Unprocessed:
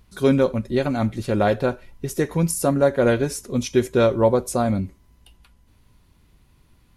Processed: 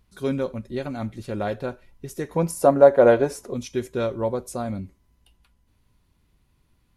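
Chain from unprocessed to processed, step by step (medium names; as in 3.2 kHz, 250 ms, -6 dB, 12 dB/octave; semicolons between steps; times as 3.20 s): 2.36–3.54 s: peaking EQ 700 Hz +15 dB 2.2 oct; trim -8 dB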